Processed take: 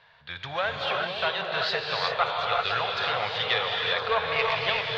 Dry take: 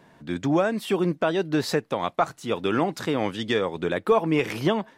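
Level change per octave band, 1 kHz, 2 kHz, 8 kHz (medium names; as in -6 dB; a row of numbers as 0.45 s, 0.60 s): +1.0 dB, +5.5 dB, under -10 dB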